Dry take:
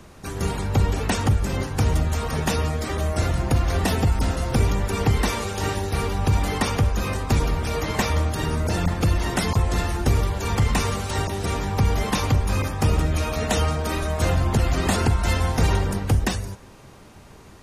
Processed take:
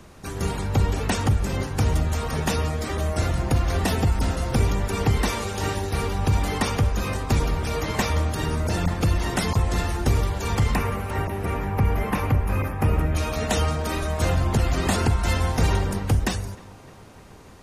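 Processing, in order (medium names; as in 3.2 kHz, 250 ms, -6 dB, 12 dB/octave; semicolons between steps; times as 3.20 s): 10.75–13.15 s: high-order bell 5.4 kHz -14 dB; tape echo 304 ms, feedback 84%, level -21 dB, low-pass 2.4 kHz; trim -1 dB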